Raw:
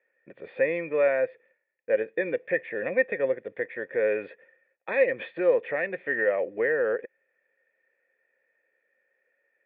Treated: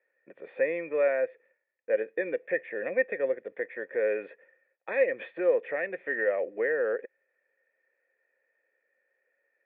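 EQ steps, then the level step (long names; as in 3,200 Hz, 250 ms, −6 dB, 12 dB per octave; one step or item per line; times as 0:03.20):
Bessel high-pass filter 320 Hz, order 2
dynamic equaliser 970 Hz, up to −4 dB, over −43 dBFS, Q 2.4
high-frequency loss of the air 310 metres
0.0 dB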